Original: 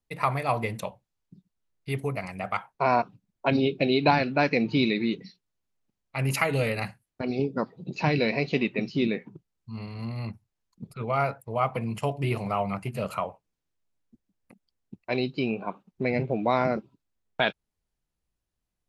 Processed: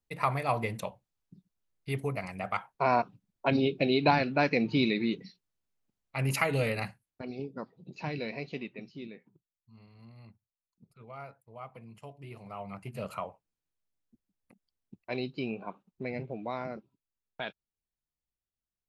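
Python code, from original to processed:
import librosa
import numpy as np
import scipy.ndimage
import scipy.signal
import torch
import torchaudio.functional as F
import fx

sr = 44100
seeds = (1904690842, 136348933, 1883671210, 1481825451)

y = fx.gain(x, sr, db=fx.line((6.79, -3.0), (7.36, -11.5), (8.44, -11.5), (9.12, -19.0), (12.29, -19.0), (12.99, -7.0), (15.6, -7.0), (16.66, -13.0)))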